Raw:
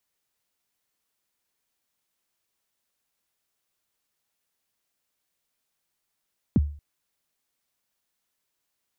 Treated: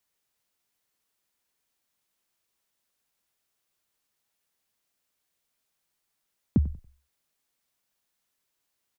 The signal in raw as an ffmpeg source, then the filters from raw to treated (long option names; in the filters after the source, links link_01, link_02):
-f lavfi -i "aevalsrc='0.224*pow(10,-3*t/0.43)*sin(2*PI*(300*0.031/log(73/300)*(exp(log(73/300)*min(t,0.031)/0.031)-1)+73*max(t-0.031,0)))':duration=0.23:sample_rate=44100"
-filter_complex "[0:a]asplit=4[link_01][link_02][link_03][link_04];[link_02]adelay=94,afreqshift=-47,volume=-17dB[link_05];[link_03]adelay=188,afreqshift=-94,volume=-26.4dB[link_06];[link_04]adelay=282,afreqshift=-141,volume=-35.7dB[link_07];[link_01][link_05][link_06][link_07]amix=inputs=4:normalize=0"